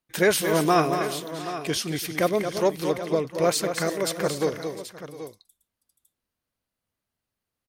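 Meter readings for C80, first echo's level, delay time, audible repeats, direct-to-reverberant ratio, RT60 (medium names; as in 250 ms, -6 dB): no reverb, -8.0 dB, 225 ms, 4, no reverb, no reverb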